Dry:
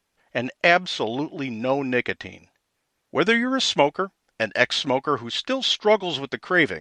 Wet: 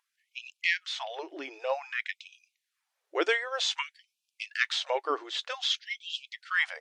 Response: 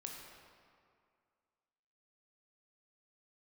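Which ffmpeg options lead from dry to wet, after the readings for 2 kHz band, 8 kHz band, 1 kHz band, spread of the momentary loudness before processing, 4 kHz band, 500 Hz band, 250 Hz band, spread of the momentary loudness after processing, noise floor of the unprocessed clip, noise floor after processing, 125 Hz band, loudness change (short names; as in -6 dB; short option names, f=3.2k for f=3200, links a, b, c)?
-7.0 dB, -6.5 dB, -10.5 dB, 10 LU, -6.5 dB, -12.5 dB, -20.0 dB, 12 LU, -76 dBFS, -85 dBFS, under -40 dB, -8.5 dB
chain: -af "aeval=exprs='val(0)+0.0158*(sin(2*PI*50*n/s)+sin(2*PI*2*50*n/s)/2+sin(2*PI*3*50*n/s)/3+sin(2*PI*4*50*n/s)/4+sin(2*PI*5*50*n/s)/5)':c=same,afftfilt=real='re*gte(b*sr/1024,290*pow(2400/290,0.5+0.5*sin(2*PI*0.53*pts/sr)))':imag='im*gte(b*sr/1024,290*pow(2400/290,0.5+0.5*sin(2*PI*0.53*pts/sr)))':win_size=1024:overlap=0.75,volume=-6.5dB"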